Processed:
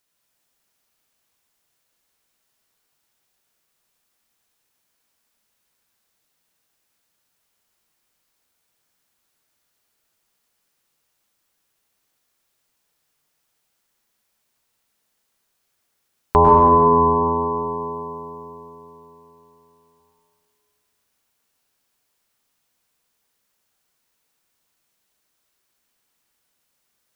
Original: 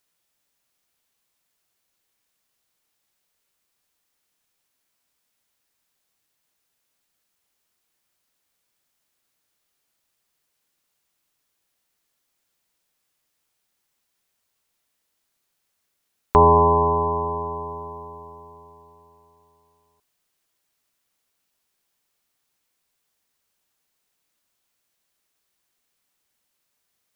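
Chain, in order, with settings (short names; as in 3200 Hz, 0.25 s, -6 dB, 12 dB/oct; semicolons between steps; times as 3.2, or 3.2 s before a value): plate-style reverb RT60 2.2 s, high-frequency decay 0.65×, pre-delay 90 ms, DRR -1.5 dB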